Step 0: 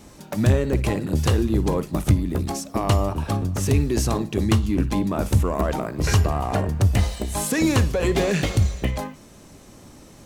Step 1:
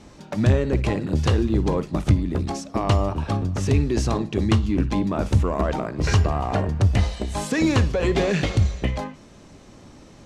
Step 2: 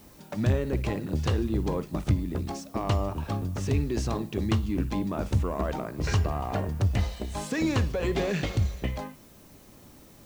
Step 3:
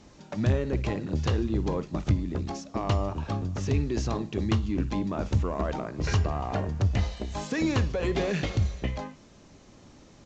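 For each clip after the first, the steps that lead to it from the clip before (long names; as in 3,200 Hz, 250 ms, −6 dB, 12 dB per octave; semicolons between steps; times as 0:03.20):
low-pass filter 5,700 Hz 12 dB per octave
background noise blue −52 dBFS; level −6.5 dB
downsampling to 16,000 Hz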